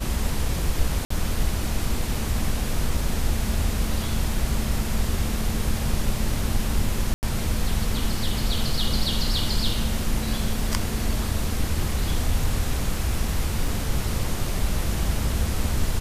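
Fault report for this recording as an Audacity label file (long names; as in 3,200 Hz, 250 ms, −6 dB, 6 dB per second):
1.050000	1.100000	drop-out 54 ms
7.140000	7.230000	drop-out 89 ms
13.680000	13.680000	drop-out 2.9 ms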